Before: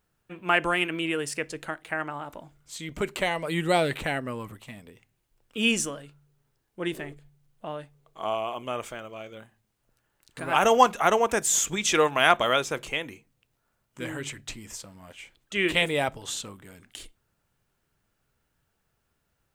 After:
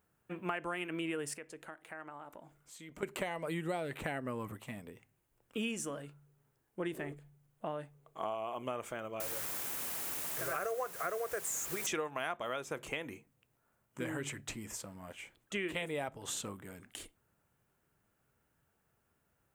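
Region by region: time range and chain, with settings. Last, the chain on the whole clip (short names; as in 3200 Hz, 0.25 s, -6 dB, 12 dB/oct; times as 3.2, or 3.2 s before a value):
1.34–3.03 bell 86 Hz -8 dB 2 oct + compressor 2:1, threshold -53 dBFS
9.2–11.87 fixed phaser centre 880 Hz, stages 6 + requantised 6-bit, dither triangular
whole clip: HPF 87 Hz 6 dB/oct; bell 4200 Hz -8 dB 1.5 oct; compressor 8:1, threshold -34 dBFS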